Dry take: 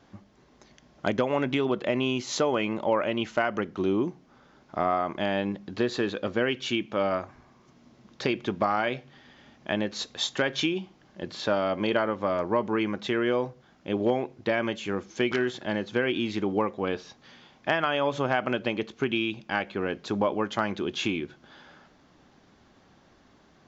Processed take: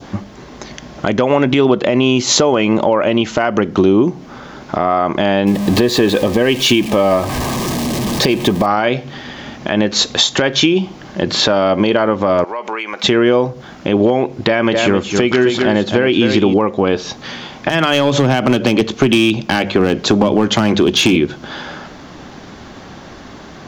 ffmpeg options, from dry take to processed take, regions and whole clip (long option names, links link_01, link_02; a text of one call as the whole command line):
ffmpeg -i in.wav -filter_complex "[0:a]asettb=1/sr,asplit=3[link_01][link_02][link_03];[link_01]atrim=end=5.474[link_04];[link_02]atrim=start=5.47:end=8.66,asetpts=PTS-STARTPTS,afade=type=in:duration=0.004:curve=qsin,afade=type=out:start_time=3.186:duration=0.004:curve=qsin,aeval=exprs='val(0)+0.5*0.0133*sgn(val(0))':channel_layout=same,asuperstop=centerf=1400:order=20:qfactor=6.2[link_05];[link_03]atrim=start=8.656[link_06];[link_04][link_05]acrossfade=duration=0.004:curve1=hsin:curve2=qsin[link_07];[link_07][link_06]acrossfade=duration=0.004:curve1=qsin:curve2=hsin,asettb=1/sr,asplit=3[link_08][link_09][link_10];[link_08]atrim=end=12.444[link_11];[link_09]atrim=start=12.44:end=13.04,asetpts=PTS-STARTPTS,afade=type=in:duration=0.004:curve=qsin,afade=type=out:start_time=0.596:duration=0.004:curve=qsin,highpass=750,equalizer=frequency=2300:width=5.1:gain=7.5,acompressor=threshold=-41dB:ratio=6:attack=3.2:release=140:knee=1:detection=peak[link_12];[link_10]atrim=start=13.036[link_13];[link_11][link_12]acrossfade=duration=0.004:curve1=hsin:curve2=qsin[link_14];[link_14][link_13]acrossfade=duration=0.004:curve1=qsin:curve2=hsin,asettb=1/sr,asplit=3[link_15][link_16][link_17];[link_15]atrim=end=14.384[link_18];[link_16]atrim=start=14.38:end=16.54,asetpts=PTS-STARTPTS,afade=type=in:duration=0.004:curve=qsin,afade=type=out:start_time=2.156:duration=0.004:curve=qsin,bandreject=frequency=6000:width=12,aecho=1:1:260:0.355,atrim=end_sample=95256[link_19];[link_17]atrim=start=16.536[link_20];[link_18][link_19]acrossfade=duration=0.004:curve1=hsin:curve2=qsin[link_21];[link_21][link_20]acrossfade=duration=0.004:curve1=qsin:curve2=hsin,asettb=1/sr,asplit=3[link_22][link_23][link_24];[link_22]atrim=end=17.694[link_25];[link_23]atrim=start=17.69:end=21.16,asetpts=PTS-STARTPTS,afade=type=in:duration=0.004:curve=qsin,afade=type=out:start_time=3.466:duration=0.004:curve=qsin,bandreject=frequency=50:width_type=h:width=6,bandreject=frequency=100:width_type=h:width=6,bandreject=frequency=150:width_type=h:width=6,bandreject=frequency=200:width_type=h:width=6,acrossover=split=310|3000[link_26][link_27][link_28];[link_27]acompressor=threshold=-33dB:ratio=5:attack=3.2:release=140:knee=2.83:detection=peak[link_29];[link_26][link_29][link_28]amix=inputs=3:normalize=0,asoftclip=type=hard:threshold=-25.5dB[link_30];[link_24]atrim=start=21.156[link_31];[link_25][link_30]acrossfade=duration=0.004:curve1=hsin:curve2=qsin[link_32];[link_32][link_31]acrossfade=duration=0.004:curve1=qsin:curve2=hsin,acompressor=threshold=-32dB:ratio=6,adynamicequalizer=threshold=0.00178:dfrequency=1800:dqfactor=0.91:tfrequency=1800:tqfactor=0.91:attack=5:release=100:ratio=0.375:range=2:mode=cutabove:tftype=bell,alimiter=level_in=25dB:limit=-1dB:release=50:level=0:latency=1,volume=-1dB" out.wav